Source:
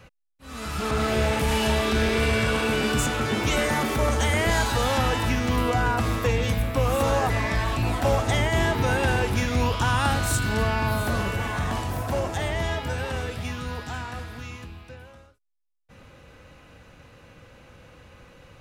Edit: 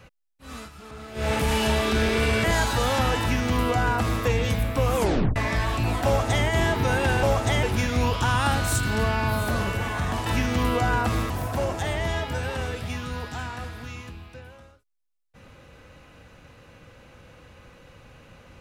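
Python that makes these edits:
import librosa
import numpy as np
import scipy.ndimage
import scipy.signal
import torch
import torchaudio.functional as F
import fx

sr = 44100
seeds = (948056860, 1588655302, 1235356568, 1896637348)

y = fx.edit(x, sr, fx.fade_down_up(start_s=0.53, length_s=0.78, db=-16.0, fade_s=0.17),
    fx.cut(start_s=2.44, length_s=1.99),
    fx.duplicate(start_s=5.19, length_s=1.04, to_s=11.85),
    fx.tape_stop(start_s=6.94, length_s=0.41),
    fx.duplicate(start_s=8.05, length_s=0.4, to_s=9.22), tone=tone)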